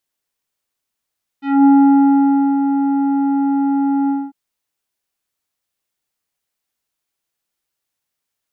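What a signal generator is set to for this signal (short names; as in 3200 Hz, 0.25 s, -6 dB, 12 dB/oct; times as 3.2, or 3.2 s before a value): synth note square C#4 24 dB/oct, low-pass 990 Hz, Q 0.77, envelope 2 oct, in 0.17 s, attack 0.223 s, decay 0.93 s, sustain -7.5 dB, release 0.23 s, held 2.67 s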